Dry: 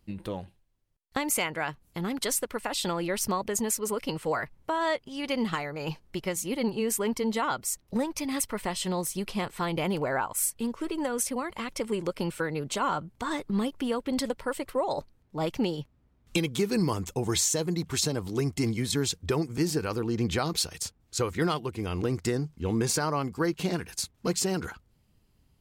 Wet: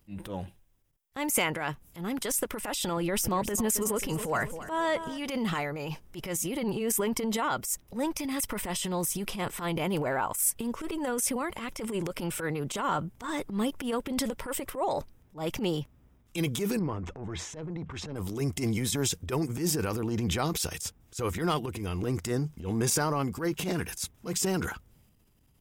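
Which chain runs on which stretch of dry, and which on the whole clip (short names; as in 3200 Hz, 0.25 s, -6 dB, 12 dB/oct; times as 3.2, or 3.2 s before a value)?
2.97–5.18 low shelf 210 Hz +6 dB + warbling echo 0.266 s, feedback 51%, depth 72 cents, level -16.5 dB
16.79–18.16 LPF 1800 Hz + transient shaper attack -9 dB, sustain +2 dB + compressor 8:1, threshold -31 dBFS
whole clip: high shelf 11000 Hz +9.5 dB; notch 4300 Hz, Q 6.2; transient shaper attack -12 dB, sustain +6 dB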